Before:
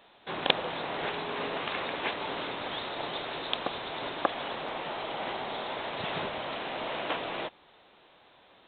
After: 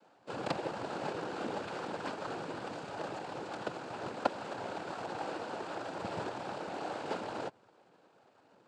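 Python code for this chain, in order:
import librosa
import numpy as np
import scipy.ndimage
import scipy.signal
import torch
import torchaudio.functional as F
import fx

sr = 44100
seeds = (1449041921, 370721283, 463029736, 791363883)

y = scipy.signal.medfilt(x, 25)
y = fx.noise_vocoder(y, sr, seeds[0], bands=8)
y = F.gain(torch.from_numpy(y), -1.0).numpy()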